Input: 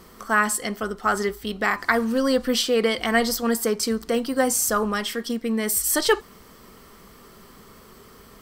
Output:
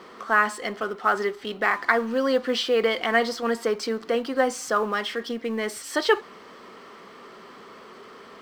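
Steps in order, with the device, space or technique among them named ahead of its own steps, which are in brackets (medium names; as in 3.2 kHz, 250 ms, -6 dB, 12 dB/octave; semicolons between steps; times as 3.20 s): phone line with mismatched companding (band-pass 320–3400 Hz; companding laws mixed up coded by mu)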